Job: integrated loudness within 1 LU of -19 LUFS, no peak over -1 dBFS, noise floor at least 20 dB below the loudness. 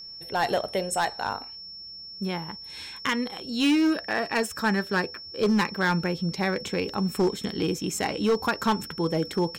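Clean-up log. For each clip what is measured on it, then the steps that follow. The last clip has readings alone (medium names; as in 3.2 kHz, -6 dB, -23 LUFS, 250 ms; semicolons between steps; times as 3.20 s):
clipped samples 1.4%; clipping level -17.5 dBFS; steady tone 5.4 kHz; tone level -39 dBFS; loudness -27.0 LUFS; peak level -17.5 dBFS; loudness target -19.0 LUFS
-> clip repair -17.5 dBFS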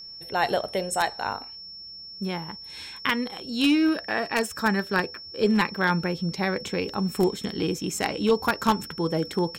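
clipped samples 0.0%; steady tone 5.4 kHz; tone level -39 dBFS
-> band-stop 5.4 kHz, Q 30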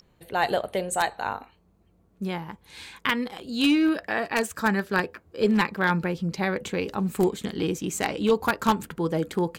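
steady tone not found; loudness -26.0 LUFS; peak level -8.5 dBFS; loudness target -19.0 LUFS
-> trim +7 dB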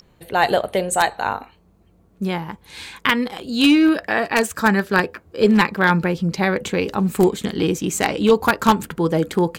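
loudness -19.0 LUFS; peak level -1.5 dBFS; noise floor -55 dBFS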